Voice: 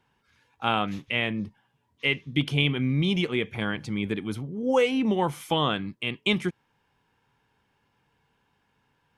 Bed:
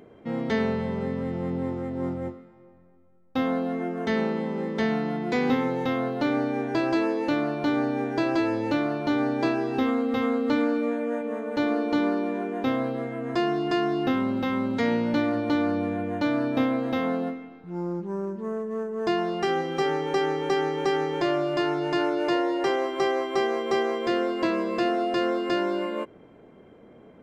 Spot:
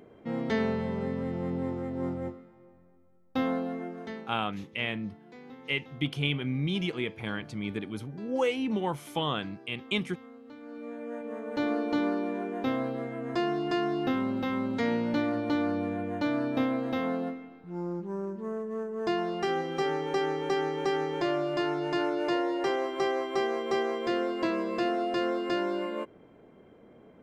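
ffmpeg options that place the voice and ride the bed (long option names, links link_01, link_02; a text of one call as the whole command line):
ffmpeg -i stem1.wav -i stem2.wav -filter_complex "[0:a]adelay=3650,volume=-5.5dB[link_01];[1:a]volume=17.5dB,afade=type=out:start_time=3.46:duration=0.84:silence=0.0841395,afade=type=in:start_time=10.61:duration=1.06:silence=0.0944061[link_02];[link_01][link_02]amix=inputs=2:normalize=0" out.wav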